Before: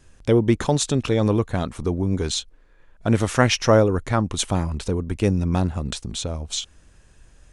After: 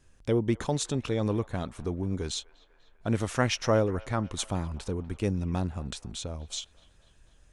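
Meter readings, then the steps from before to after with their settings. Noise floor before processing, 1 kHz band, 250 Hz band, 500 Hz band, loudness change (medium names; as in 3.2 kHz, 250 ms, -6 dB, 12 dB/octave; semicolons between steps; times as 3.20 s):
-54 dBFS, -8.5 dB, -8.5 dB, -8.5 dB, -8.5 dB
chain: feedback echo behind a band-pass 246 ms, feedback 58%, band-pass 1.4 kHz, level -18.5 dB; trim -8.5 dB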